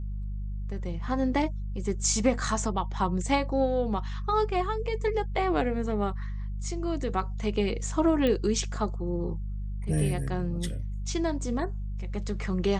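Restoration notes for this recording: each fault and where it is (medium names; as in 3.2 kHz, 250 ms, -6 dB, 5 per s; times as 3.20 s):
hum 50 Hz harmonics 4 -33 dBFS
8.27 s: pop -16 dBFS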